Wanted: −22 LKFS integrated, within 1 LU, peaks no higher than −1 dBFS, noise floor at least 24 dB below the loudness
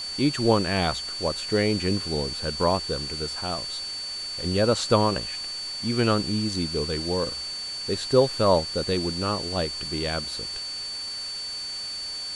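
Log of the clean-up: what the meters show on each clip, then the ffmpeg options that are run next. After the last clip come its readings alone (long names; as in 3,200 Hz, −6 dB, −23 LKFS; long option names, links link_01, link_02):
interfering tone 4,500 Hz; level of the tone −31 dBFS; background noise floor −34 dBFS; target noise floor −50 dBFS; integrated loudness −25.5 LKFS; sample peak −7.0 dBFS; target loudness −22.0 LKFS
→ -af "bandreject=frequency=4500:width=30"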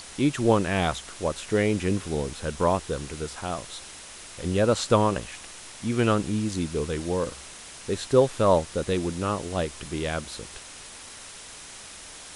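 interfering tone none found; background noise floor −44 dBFS; target noise floor −50 dBFS
→ -af "afftdn=noise_reduction=6:noise_floor=-44"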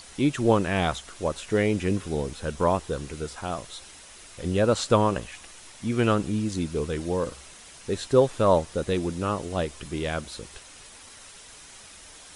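background noise floor −48 dBFS; target noise floor −51 dBFS
→ -af "afftdn=noise_reduction=6:noise_floor=-48"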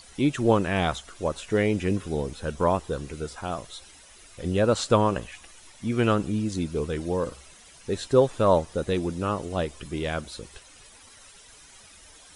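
background noise floor −51 dBFS; integrated loudness −26.5 LKFS; sample peak −7.5 dBFS; target loudness −22.0 LKFS
→ -af "volume=4.5dB"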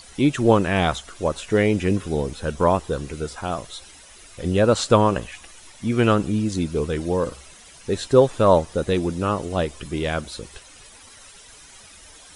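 integrated loudness −22.0 LKFS; sample peak −3.0 dBFS; background noise floor −47 dBFS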